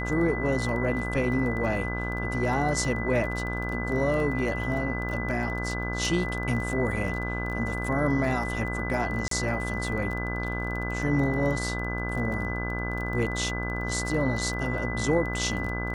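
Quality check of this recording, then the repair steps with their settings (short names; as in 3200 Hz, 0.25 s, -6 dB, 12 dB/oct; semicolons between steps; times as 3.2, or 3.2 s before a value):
buzz 60 Hz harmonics 27 -32 dBFS
crackle 21/s -33 dBFS
tone 2000 Hz -33 dBFS
9.28–9.31 gap 33 ms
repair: de-click; notch 2000 Hz, Q 30; de-hum 60 Hz, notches 27; interpolate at 9.28, 33 ms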